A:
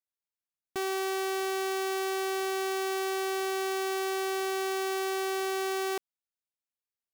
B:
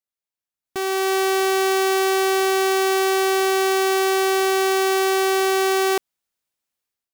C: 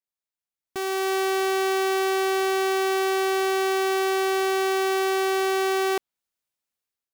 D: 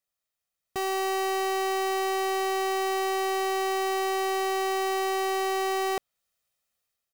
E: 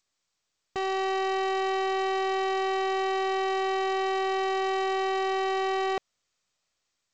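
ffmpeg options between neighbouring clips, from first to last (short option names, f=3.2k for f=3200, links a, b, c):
-af "dynaudnorm=f=570:g=3:m=12dB"
-af "adynamicequalizer=threshold=0.0126:dfrequency=4400:dqfactor=0.7:tfrequency=4400:tqfactor=0.7:attack=5:release=100:ratio=0.375:range=2:mode=cutabove:tftype=highshelf,volume=-4dB"
-af "aecho=1:1:1.6:0.47,asoftclip=type=tanh:threshold=-30.5dB,volume=5dB"
-ar 16000 -c:a g722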